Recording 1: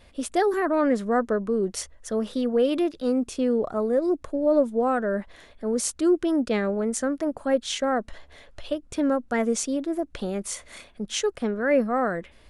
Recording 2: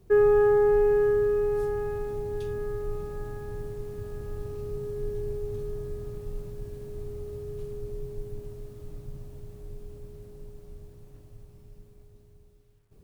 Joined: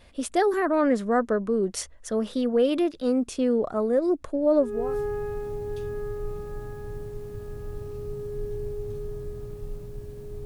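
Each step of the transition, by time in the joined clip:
recording 1
4.76 s: go over to recording 2 from 1.40 s, crossfade 0.42 s linear

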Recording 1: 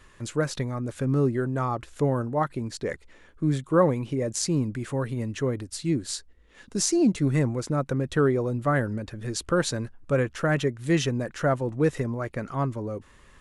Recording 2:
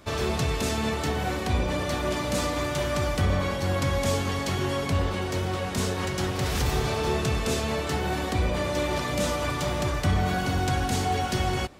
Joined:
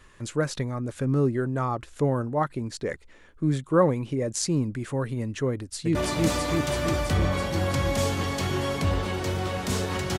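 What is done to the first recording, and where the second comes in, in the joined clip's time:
recording 1
5.52–5.95 s: echo throw 330 ms, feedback 75%, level -0.5 dB
5.95 s: go over to recording 2 from 2.03 s

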